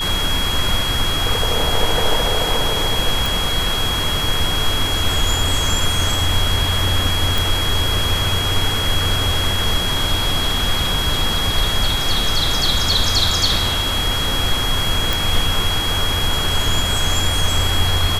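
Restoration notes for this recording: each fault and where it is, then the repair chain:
whine 3.3 kHz -21 dBFS
3.26 s: pop
7.38 s: pop
15.13 s: pop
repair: de-click; band-stop 3.3 kHz, Q 30

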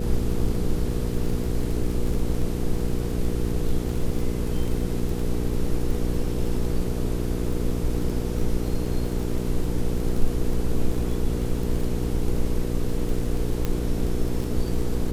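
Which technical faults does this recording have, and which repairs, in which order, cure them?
crackle 22 per s -28 dBFS
hum 60 Hz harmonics 8 -28 dBFS
13.65 s: pop -12 dBFS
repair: de-click; de-hum 60 Hz, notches 8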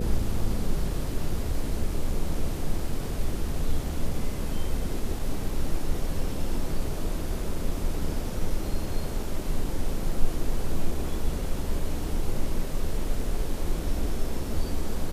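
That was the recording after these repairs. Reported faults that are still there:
nothing left

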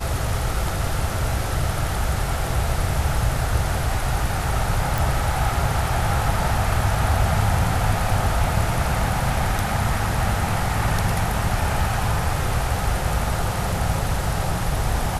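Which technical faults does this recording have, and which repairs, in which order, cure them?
4.98 s: pop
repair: de-click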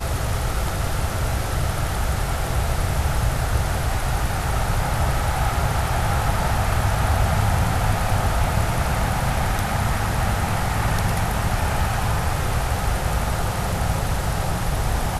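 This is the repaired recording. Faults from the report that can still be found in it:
nothing left

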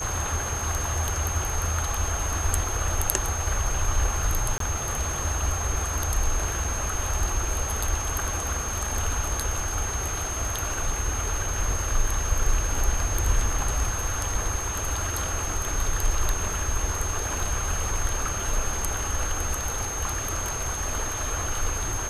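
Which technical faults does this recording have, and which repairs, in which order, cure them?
whine 6.4 kHz -31 dBFS
4.58–4.60 s: dropout 23 ms
6.64 s: dropout 4.6 ms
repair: band-stop 6.4 kHz, Q 30; interpolate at 4.58 s, 23 ms; interpolate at 6.64 s, 4.6 ms

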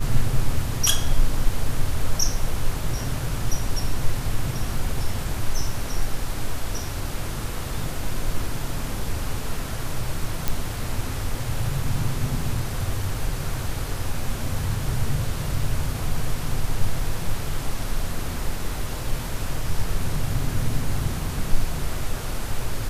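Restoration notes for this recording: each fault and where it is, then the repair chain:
10.48 s: pop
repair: de-click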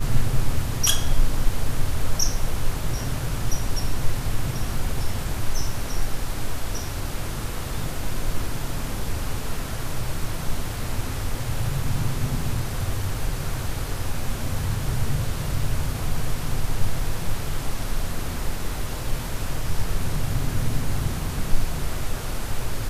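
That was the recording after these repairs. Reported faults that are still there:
nothing left

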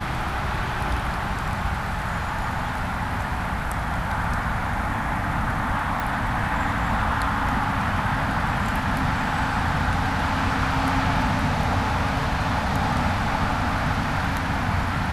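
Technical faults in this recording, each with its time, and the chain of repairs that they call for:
6.00 s: pop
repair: de-click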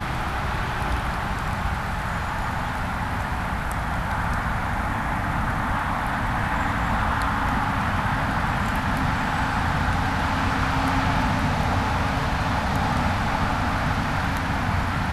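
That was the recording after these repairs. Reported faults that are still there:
nothing left

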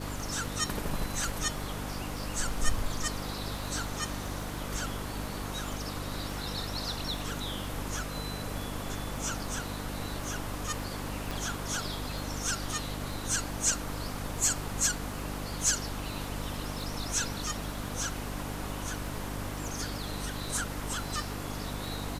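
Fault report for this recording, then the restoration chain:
crackle 51 per s -41 dBFS
hum 50 Hz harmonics 6 -39 dBFS
11.31 s: pop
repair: de-click; de-hum 50 Hz, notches 6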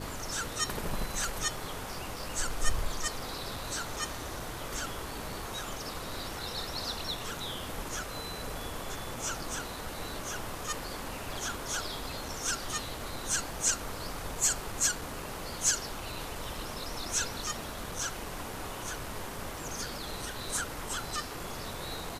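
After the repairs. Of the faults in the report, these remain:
11.31 s: pop

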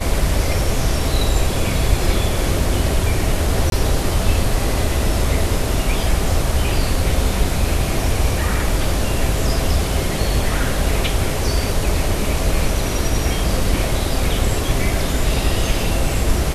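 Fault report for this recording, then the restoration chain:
3.70–3.72 s: dropout 22 ms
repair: interpolate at 3.70 s, 22 ms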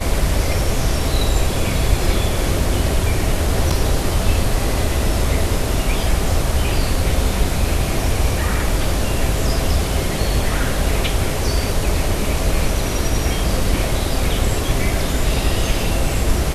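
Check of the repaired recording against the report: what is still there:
nothing left

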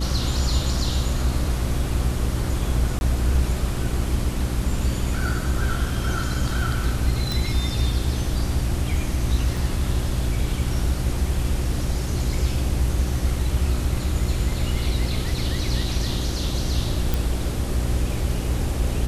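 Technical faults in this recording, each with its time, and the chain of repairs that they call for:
hum 60 Hz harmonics 6 -27 dBFS
2.99–3.01 s: dropout 21 ms
7.32 s: pop
9.57 s: dropout 3.8 ms
17.14 s: pop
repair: de-click; de-hum 60 Hz, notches 6; interpolate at 2.99 s, 21 ms; interpolate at 9.57 s, 3.8 ms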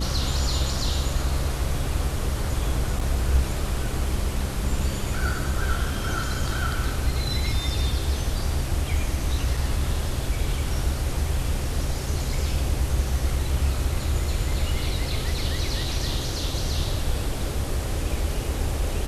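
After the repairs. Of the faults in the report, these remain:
17.14 s: pop

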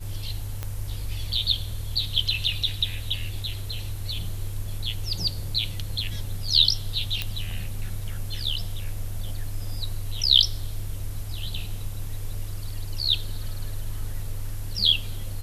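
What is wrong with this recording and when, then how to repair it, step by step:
0.63 s: pop -16 dBFS
7.22 s: pop -12 dBFS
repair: de-click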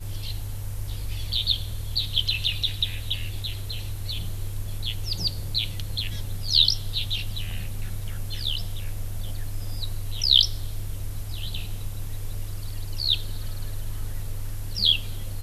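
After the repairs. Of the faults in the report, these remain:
nothing left

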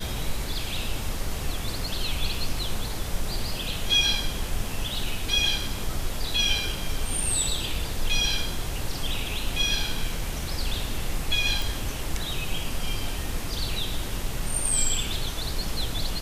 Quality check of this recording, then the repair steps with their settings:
11.62 s: pop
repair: de-click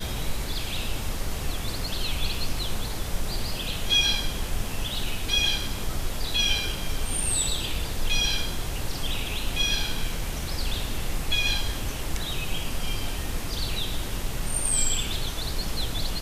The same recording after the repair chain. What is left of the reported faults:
nothing left

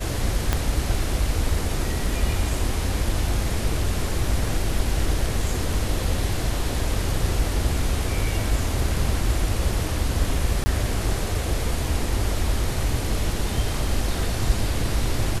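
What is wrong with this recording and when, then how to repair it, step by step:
0.53 s: pop -6 dBFS
10.64–10.66 s: dropout 20 ms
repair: de-click; interpolate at 10.64 s, 20 ms

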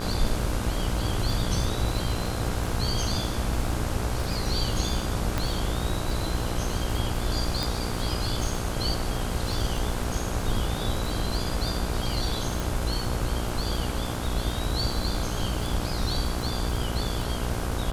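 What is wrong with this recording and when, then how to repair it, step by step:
buzz 60 Hz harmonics 27 -32 dBFS
crackle 54 per s -31 dBFS
5.38 s: pop
7.63 s: pop
12.60 s: pop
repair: de-click; de-hum 60 Hz, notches 27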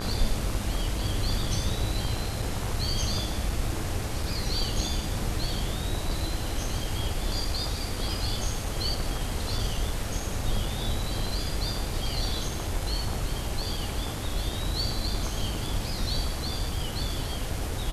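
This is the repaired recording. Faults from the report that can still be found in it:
5.38 s: pop

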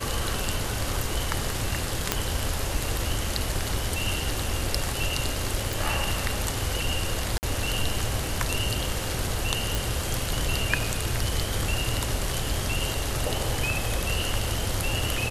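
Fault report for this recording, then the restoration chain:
2.12 s: pop -4 dBFS
5.73 s: pop
7.38–7.43 s: dropout 49 ms
9.75 s: pop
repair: de-click; interpolate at 7.38 s, 49 ms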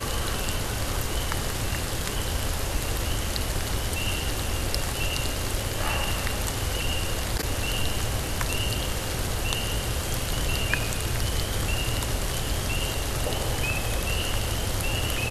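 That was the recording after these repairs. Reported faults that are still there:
nothing left

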